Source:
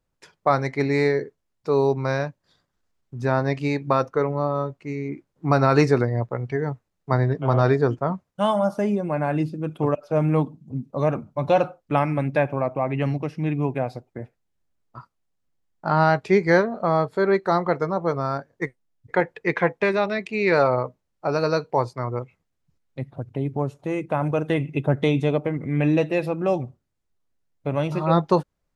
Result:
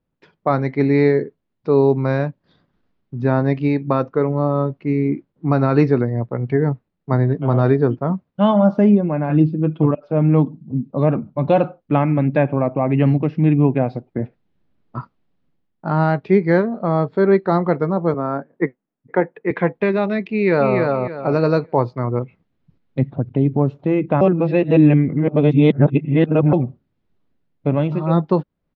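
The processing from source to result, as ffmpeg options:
-filter_complex "[0:a]asettb=1/sr,asplit=3[a][b][c];[a]atrim=end=9.294[d];[b]atrim=start=9.29:end=9.91,asetpts=PTS-STARTPTS,afade=t=in:d=0.004:c=qsin,afade=t=out:st=0.616:d=0.004:c=qsin,aecho=1:1:6.1:0.89,atrim=end_sample=27342[e];[c]atrim=start=9.906[f];[d][e]acrossfade=d=0.004:c1=hsin:c2=qsin[g];[g][f]acrossfade=d=0.004:c1=qsin:c2=hsin,asettb=1/sr,asplit=3[h][i][j];[h]atrim=end=18.144[k];[i]atrim=start=18.14:end=19.51,asetpts=PTS-STARTPTS,afade=t=in:d=0.004:c=qsin,afade=t=out:st=1.366:d=0.004:c=qsin,acrossover=split=160 2400:gain=0.0794 1 0.158[l][m][n];[l][m][n]amix=inputs=3:normalize=0[o];[j]atrim=start=19.506[p];[k][o]acrossfade=d=0.004:c1=hsin:c2=qsin[q];[q][p]acrossfade=d=0.004:c1=qsin:c2=hsin,asplit=2[r][s];[s]afade=t=in:st=20.3:d=0.01,afade=t=out:st=20.78:d=0.01,aecho=0:1:290|580|870|1160:0.707946|0.176986|0.0442466|0.0110617[t];[r][t]amix=inputs=2:normalize=0,asplit=3[u][v][w];[u]atrim=end=24.212[x];[v]atrim=start=24.208:end=26.532,asetpts=PTS-STARTPTS,areverse[y];[w]atrim=start=26.528[z];[x][y]acrossfade=d=0.004:c1=hsin:c2=hsin[aa];[aa][z]acrossfade=d=0.004:c1=hsin:c2=hsin,lowpass=f=4k:w=0.5412,lowpass=f=4k:w=1.3066,equalizer=f=220:t=o:w=2:g=10,dynaudnorm=f=110:g=7:m=11.5dB,volume=-3dB"

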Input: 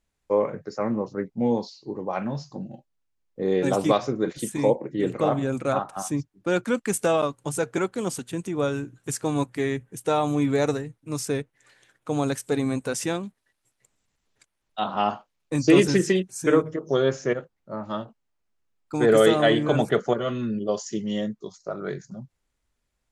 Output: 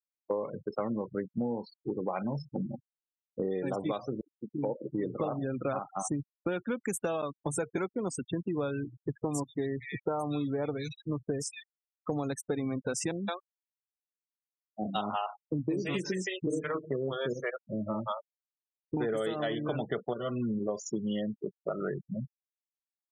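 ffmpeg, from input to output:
-filter_complex "[0:a]asettb=1/sr,asplit=3[a][b][c];[a]atrim=end=8.834[d];[b]atrim=start=8.83:end=12.1,asetpts=PTS-STARTPTS,afade=t=in:d=0.004:c=qsin,afade=t=out:st=3.266:d=0.004:c=qsin,acrossover=split=2000[e][f];[f]adelay=230[g];[e][g]amix=inputs=2:normalize=0,atrim=end_sample=144207[h];[c]atrim=start=12.096[i];[d][h]acrossfade=d=0.004:c1=hsin:c2=qsin[j];[j][i]acrossfade=d=0.004:c1=qsin:c2=hsin,asettb=1/sr,asplit=3[k][l][m];[k]atrim=end=13.114[n];[l]atrim=start=13.11:end=18.97,asetpts=PTS-STARTPTS,afade=t=in:d=0.004:c=qsin,afade=t=out:st=5.856:d=0.004:c=qsin,acrossover=split=520[o][p];[p]adelay=170[q];[o][q]amix=inputs=2:normalize=0,atrim=end_sample=258426[r];[m]atrim=start=18.966[s];[n][r]acrossfade=d=0.004:c1=hsin:c2=qsin[t];[t][s]acrossfade=d=0.004:c1=qsin:c2=hsin,asplit=2[u][v];[u]atrim=end=4.21,asetpts=PTS-STARTPTS,afade=t=out:st=4.206:d=0.004:c=hsin[w];[v]atrim=start=4.21,asetpts=PTS-STARTPTS,afade=t=in:d=1.03[x];[w][x]concat=n=2:v=0:a=1,afftfilt=real='re*gte(hypot(re,im),0.0282)':imag='im*gte(hypot(re,im),0.0282)':win_size=1024:overlap=0.75,acompressor=threshold=-32dB:ratio=10,volume=3dB"

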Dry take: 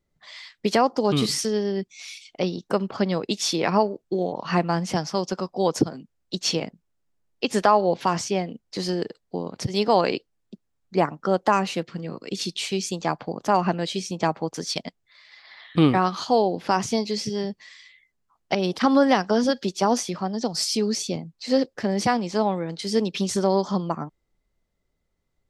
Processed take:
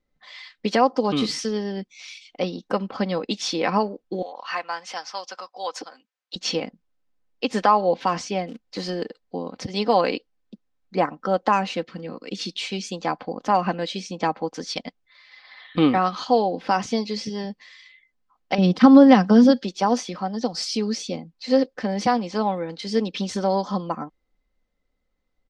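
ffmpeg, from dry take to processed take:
-filter_complex "[0:a]asettb=1/sr,asplit=3[a][b][c];[a]atrim=end=4.224[d];[b]atrim=start=4.22:end=6.36,asetpts=PTS-STARTPTS,afade=t=in:d=0.004:c=qsin,afade=t=out:st=2.136:d=0.004:c=qsin,highpass=960[e];[c]atrim=start=6.356[f];[d][e]acrossfade=d=0.004:c1=hsin:c2=qsin[g];[g][f]acrossfade=d=0.004:c1=qsin:c2=hsin,asplit=3[h][i][j];[h]afade=t=out:st=8.47:d=0.02[k];[i]acrusher=bits=4:mode=log:mix=0:aa=0.000001,afade=t=in:st=8.47:d=0.02,afade=t=out:st=8.88:d=0.02[l];[j]afade=t=in:st=8.88:d=0.02[m];[k][l][m]amix=inputs=3:normalize=0,asettb=1/sr,asplit=3[n][o][p];[n]atrim=end=18.584[q];[o]atrim=start=18.58:end=19.62,asetpts=PTS-STARTPTS,afade=t=in:d=0.004:c=qsin,afade=t=out:st=1.036:d=0.004:c=qsin,equalizer=f=170:w=0.95:g=13.5[r];[p]atrim=start=19.616[s];[q][r]acrossfade=d=0.004:c1=hsin:c2=qsin[t];[t][s]acrossfade=d=0.004:c1=qsin:c2=hsin,lowpass=4.9k,equalizer=f=97:t=o:w=2.2:g=-4.5,aecho=1:1:3.9:0.47"

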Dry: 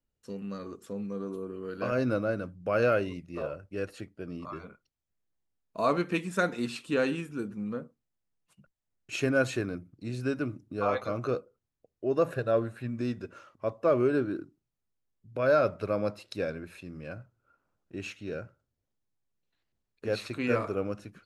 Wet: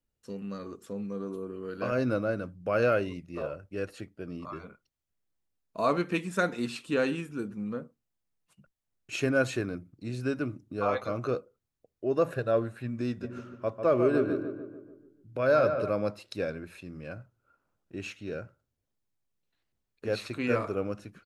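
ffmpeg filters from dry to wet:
-filter_complex "[0:a]asplit=3[a][b][c];[a]afade=t=out:st=13.22:d=0.02[d];[b]asplit=2[e][f];[f]adelay=146,lowpass=f=2k:p=1,volume=-7dB,asplit=2[g][h];[h]adelay=146,lowpass=f=2k:p=1,volume=0.54,asplit=2[i][j];[j]adelay=146,lowpass=f=2k:p=1,volume=0.54,asplit=2[k][l];[l]adelay=146,lowpass=f=2k:p=1,volume=0.54,asplit=2[m][n];[n]adelay=146,lowpass=f=2k:p=1,volume=0.54,asplit=2[o][p];[p]adelay=146,lowpass=f=2k:p=1,volume=0.54,asplit=2[q][r];[r]adelay=146,lowpass=f=2k:p=1,volume=0.54[s];[e][g][i][k][m][o][q][s]amix=inputs=8:normalize=0,afade=t=in:st=13.22:d=0.02,afade=t=out:st=15.89:d=0.02[t];[c]afade=t=in:st=15.89:d=0.02[u];[d][t][u]amix=inputs=3:normalize=0"

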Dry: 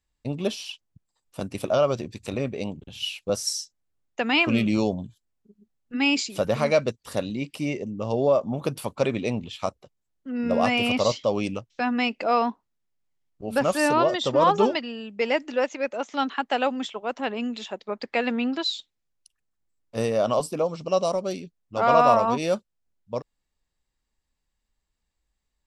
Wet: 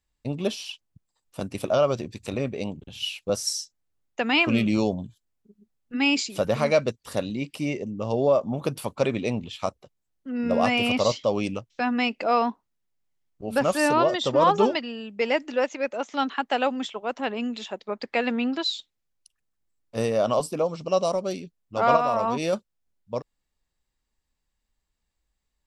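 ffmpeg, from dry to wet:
-filter_complex "[0:a]asettb=1/sr,asplit=3[a][b][c];[a]atrim=end=21.964[d];[b]atrim=start=21.96:end=22.53,asetpts=PTS-STARTPTS,afade=t=in:d=0.004:c=qsin,afade=t=out:st=0.566:d=0.004:c=qsin,acompressor=threshold=-19dB:ratio=6:attack=3.2:release=140:knee=1:detection=peak[e];[c]atrim=start=22.526[f];[d][e]acrossfade=d=0.004:c1=hsin:c2=qsin[g];[g][f]acrossfade=d=0.004:c1=qsin:c2=hsin"

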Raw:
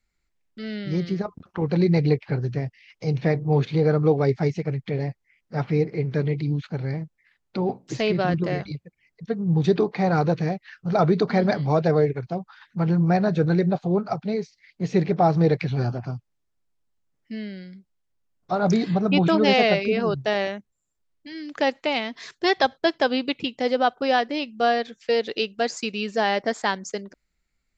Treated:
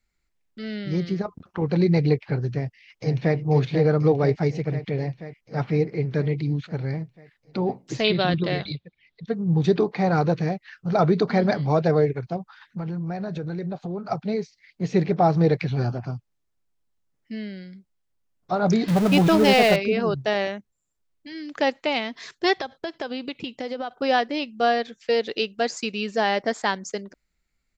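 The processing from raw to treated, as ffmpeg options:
-filter_complex "[0:a]asplit=2[a][b];[b]afade=t=in:st=2.53:d=0.01,afade=t=out:st=3.37:d=0.01,aecho=0:1:490|980|1470|1960|2450|2940|3430|3920|4410|4900|5390:0.446684|0.312679|0.218875|0.153212|0.107249|0.0750741|0.0525519|0.0367863|0.0257504|0.0180253|0.0126177[c];[a][c]amix=inputs=2:normalize=0,asettb=1/sr,asplit=3[d][e][f];[d]atrim=end=8.044[g];[e]atrim=start=8.04:end=9.27,asetpts=PTS-STARTPTS,afade=t=in:d=0.004:c=qsin,afade=t=out:st=1.226:d=0.004:c=qsin,lowpass=f=3.7k:t=q:w=6.7[h];[f]atrim=start=9.266[i];[g][h]acrossfade=d=0.004:c1=hsin:c2=qsin[j];[j][i]acrossfade=d=0.004:c1=qsin:c2=hsin,asettb=1/sr,asplit=3[k][l][m];[k]atrim=end=12.364[n];[l]atrim=start=12.36:end=14.09,asetpts=PTS-STARTPTS,afade=t=in:d=0.004:c=qsin,afade=t=out:st=1.726:d=0.004:c=qsin,acompressor=threshold=-27dB:ratio=6:attack=3.2:release=140:knee=1:detection=peak[o];[m]atrim=start=14.086[p];[n][o]acrossfade=d=0.004:c1=hsin:c2=qsin[q];[q][p]acrossfade=d=0.004:c1=qsin:c2=hsin,asettb=1/sr,asplit=3[r][s][t];[r]atrim=end=18.884[u];[s]atrim=start=18.88:end=19.76,asetpts=PTS-STARTPTS,afade=t=in:d=0.004:c=qsin,afade=t=out:st=0.876:d=0.004:c=qsin,aeval=exprs='val(0)+0.5*0.0668*sgn(val(0))':c=same[v];[t]atrim=start=19.756[w];[u][v]acrossfade=d=0.004:c1=hsin:c2=qsin[x];[x][w]acrossfade=d=0.004:c1=qsin:c2=hsin,asettb=1/sr,asplit=3[y][z][aa];[y]atrim=end=22.584[ab];[z]atrim=start=22.58:end=23.91,asetpts=PTS-STARTPTS,afade=t=in:d=0.004:c=qsin,afade=t=out:st=1.326:d=0.004:c=qsin,acompressor=threshold=-26dB:ratio=8:attack=3.2:release=140:knee=1:detection=peak[ac];[aa]atrim=start=23.906[ad];[ab][ac]acrossfade=d=0.004:c1=hsin:c2=qsin[ae];[ae][ad]acrossfade=d=0.004:c1=qsin:c2=hsin"

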